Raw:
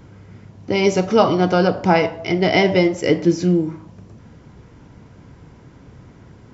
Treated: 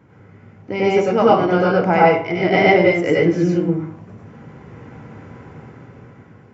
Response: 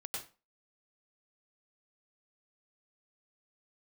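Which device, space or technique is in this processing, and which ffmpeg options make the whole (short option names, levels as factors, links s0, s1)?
far laptop microphone: -filter_complex "[1:a]atrim=start_sample=2205[s0];[0:a][s0]afir=irnorm=-1:irlink=0,highpass=110,dynaudnorm=f=350:g=7:m=3.35,highshelf=f=2900:t=q:w=1.5:g=-8"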